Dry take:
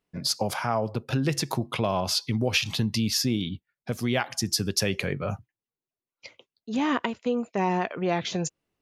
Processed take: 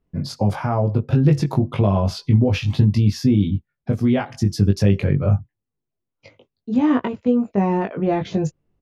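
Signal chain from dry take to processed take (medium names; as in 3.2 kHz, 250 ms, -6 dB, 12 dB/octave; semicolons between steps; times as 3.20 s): tilt EQ -4 dB/octave; doubling 20 ms -3.5 dB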